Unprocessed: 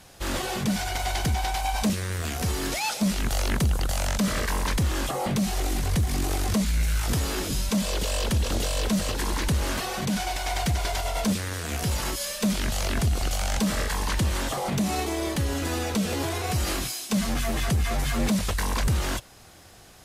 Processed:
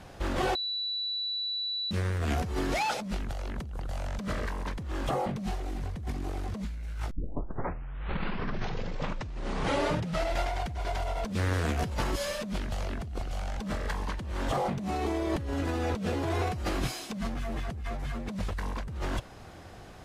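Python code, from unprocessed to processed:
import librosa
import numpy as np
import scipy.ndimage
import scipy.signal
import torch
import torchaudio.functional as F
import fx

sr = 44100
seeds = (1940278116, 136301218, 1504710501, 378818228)

y = fx.edit(x, sr, fx.bleep(start_s=0.55, length_s=1.36, hz=3950.0, db=-13.5),
    fx.tape_start(start_s=7.11, length_s=3.49), tone=tone)
y = fx.lowpass(y, sr, hz=1400.0, slope=6)
y = fx.over_compress(y, sr, threshold_db=-32.0, ratio=-1.0)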